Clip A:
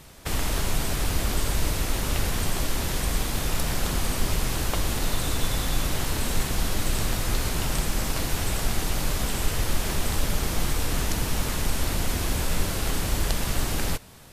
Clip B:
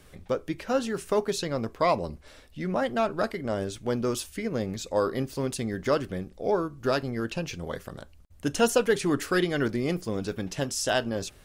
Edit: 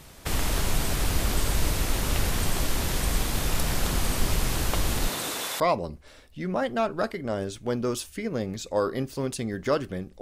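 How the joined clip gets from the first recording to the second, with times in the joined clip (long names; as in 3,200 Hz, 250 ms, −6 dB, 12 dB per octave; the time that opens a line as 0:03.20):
clip A
0:05.07–0:05.60: high-pass filter 170 Hz → 700 Hz
0:05.60: continue with clip B from 0:01.80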